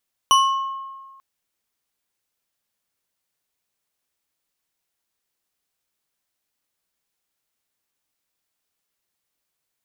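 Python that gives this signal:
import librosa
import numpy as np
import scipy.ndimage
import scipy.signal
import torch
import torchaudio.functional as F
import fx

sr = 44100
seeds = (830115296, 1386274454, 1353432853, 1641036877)

y = fx.strike_glass(sr, length_s=0.89, level_db=-11, body='bar', hz=1080.0, decay_s=1.53, tilt_db=5, modes=5)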